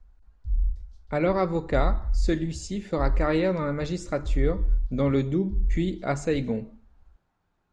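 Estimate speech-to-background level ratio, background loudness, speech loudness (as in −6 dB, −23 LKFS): 4.0 dB, −31.5 LKFS, −27.5 LKFS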